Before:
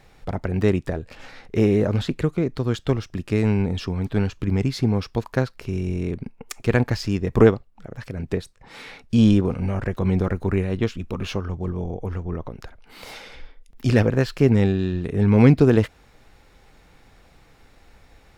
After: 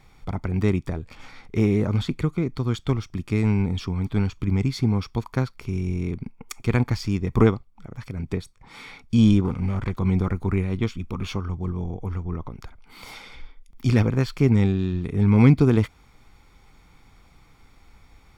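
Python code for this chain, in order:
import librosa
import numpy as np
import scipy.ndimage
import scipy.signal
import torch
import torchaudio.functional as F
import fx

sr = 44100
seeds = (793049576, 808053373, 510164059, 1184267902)

y = fx.self_delay(x, sr, depth_ms=0.21, at=(9.44, 9.99))
y = y + 0.49 * np.pad(y, (int(0.9 * sr / 1000.0), 0))[:len(y)]
y = y * 10.0 ** (-3.0 / 20.0)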